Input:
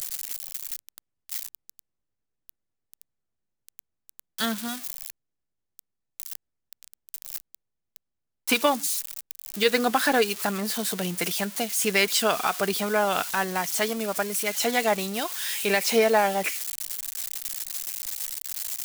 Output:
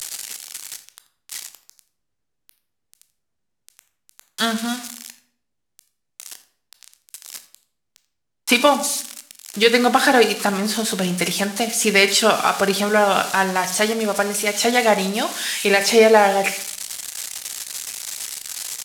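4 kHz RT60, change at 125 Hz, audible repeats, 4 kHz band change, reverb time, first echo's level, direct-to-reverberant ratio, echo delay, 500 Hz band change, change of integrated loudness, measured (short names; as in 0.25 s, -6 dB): 0.45 s, +8.0 dB, 1, +7.5 dB, 0.60 s, -19.5 dB, 9.5 dB, 84 ms, +7.5 dB, +7.0 dB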